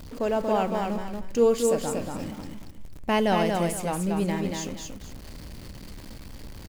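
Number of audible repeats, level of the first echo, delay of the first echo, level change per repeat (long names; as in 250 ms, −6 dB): 2, −4.0 dB, 233 ms, −11.5 dB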